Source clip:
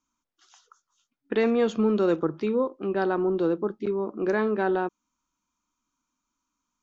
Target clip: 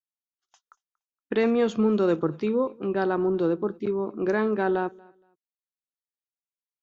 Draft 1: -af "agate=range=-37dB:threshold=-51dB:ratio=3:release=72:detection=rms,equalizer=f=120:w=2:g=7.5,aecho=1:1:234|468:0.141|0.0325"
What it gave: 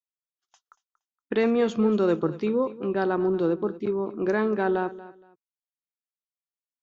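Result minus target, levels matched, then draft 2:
echo-to-direct +8.5 dB
-af "agate=range=-37dB:threshold=-51dB:ratio=3:release=72:detection=rms,equalizer=f=120:w=2:g=7.5,aecho=1:1:234|468:0.0531|0.0122"

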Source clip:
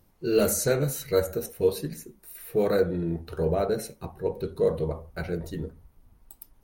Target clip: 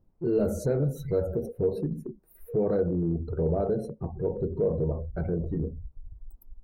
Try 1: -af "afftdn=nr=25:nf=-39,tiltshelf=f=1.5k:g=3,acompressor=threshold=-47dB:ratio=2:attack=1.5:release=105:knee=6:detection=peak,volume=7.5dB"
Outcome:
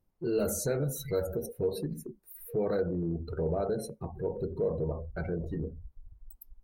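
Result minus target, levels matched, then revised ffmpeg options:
2000 Hz band +8.5 dB
-af "afftdn=nr=25:nf=-39,tiltshelf=f=1.5k:g=13.5,acompressor=threshold=-47dB:ratio=2:attack=1.5:release=105:knee=6:detection=peak,volume=7.5dB"

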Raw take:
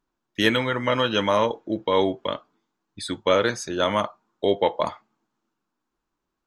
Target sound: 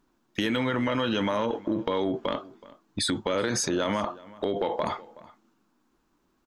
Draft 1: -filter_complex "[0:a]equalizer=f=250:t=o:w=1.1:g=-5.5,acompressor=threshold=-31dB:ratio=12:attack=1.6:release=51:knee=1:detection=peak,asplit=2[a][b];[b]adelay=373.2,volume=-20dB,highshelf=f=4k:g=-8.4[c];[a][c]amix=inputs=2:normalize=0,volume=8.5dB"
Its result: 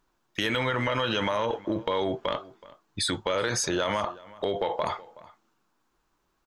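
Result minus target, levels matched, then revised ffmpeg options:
250 Hz band -4.5 dB
-filter_complex "[0:a]equalizer=f=250:t=o:w=1.1:g=6,acompressor=threshold=-31dB:ratio=12:attack=1.6:release=51:knee=1:detection=peak,asplit=2[a][b];[b]adelay=373.2,volume=-20dB,highshelf=f=4k:g=-8.4[c];[a][c]amix=inputs=2:normalize=0,volume=8.5dB"

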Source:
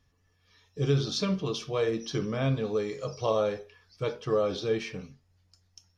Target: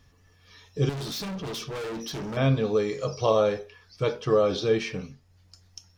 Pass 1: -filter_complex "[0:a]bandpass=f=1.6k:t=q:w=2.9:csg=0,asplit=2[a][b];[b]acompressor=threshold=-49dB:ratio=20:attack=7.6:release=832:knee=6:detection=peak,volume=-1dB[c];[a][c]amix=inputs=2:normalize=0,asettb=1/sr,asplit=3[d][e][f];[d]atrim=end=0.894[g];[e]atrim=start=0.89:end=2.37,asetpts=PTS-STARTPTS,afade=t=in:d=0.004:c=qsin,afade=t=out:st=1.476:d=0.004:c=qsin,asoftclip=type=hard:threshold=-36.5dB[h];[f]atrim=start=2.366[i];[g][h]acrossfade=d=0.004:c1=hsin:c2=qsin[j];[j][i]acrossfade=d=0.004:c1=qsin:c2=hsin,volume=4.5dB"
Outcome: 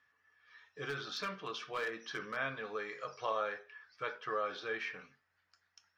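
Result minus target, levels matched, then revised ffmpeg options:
2000 Hz band +12.0 dB
-filter_complex "[0:a]asplit=2[a][b];[b]acompressor=threshold=-49dB:ratio=20:attack=7.6:release=832:knee=6:detection=peak,volume=-1dB[c];[a][c]amix=inputs=2:normalize=0,asettb=1/sr,asplit=3[d][e][f];[d]atrim=end=0.894[g];[e]atrim=start=0.89:end=2.37,asetpts=PTS-STARTPTS,afade=t=in:d=0.004:c=qsin,afade=t=out:st=1.476:d=0.004:c=qsin,asoftclip=type=hard:threshold=-36.5dB[h];[f]atrim=start=2.366[i];[g][h]acrossfade=d=0.004:c1=hsin:c2=qsin[j];[j][i]acrossfade=d=0.004:c1=qsin:c2=hsin,volume=4.5dB"

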